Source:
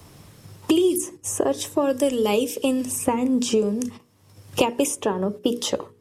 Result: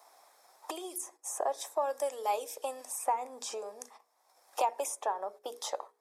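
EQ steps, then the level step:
four-pole ladder high-pass 660 Hz, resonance 60%
parametric band 2,900 Hz −14.5 dB 0.24 octaves
0.0 dB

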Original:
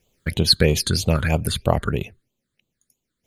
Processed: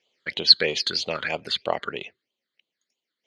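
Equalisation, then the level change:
loudspeaker in its box 430–5,600 Hz, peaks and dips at 2,000 Hz +6 dB, 3,100 Hz +7 dB, 4,400 Hz +6 dB
−3.5 dB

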